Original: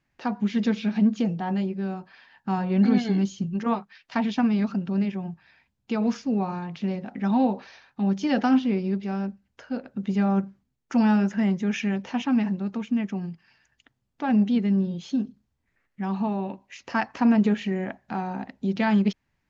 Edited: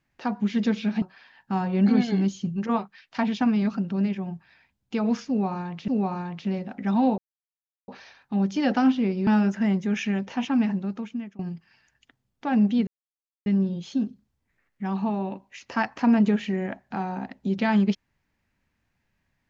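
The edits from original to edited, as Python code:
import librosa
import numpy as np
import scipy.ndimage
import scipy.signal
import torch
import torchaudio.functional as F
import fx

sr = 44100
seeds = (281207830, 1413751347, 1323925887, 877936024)

y = fx.edit(x, sr, fx.cut(start_s=1.02, length_s=0.97),
    fx.repeat(start_s=6.25, length_s=0.6, count=2),
    fx.insert_silence(at_s=7.55, length_s=0.7),
    fx.cut(start_s=8.94, length_s=2.1),
    fx.fade_out_to(start_s=12.61, length_s=0.55, floor_db=-22.5),
    fx.insert_silence(at_s=14.64, length_s=0.59), tone=tone)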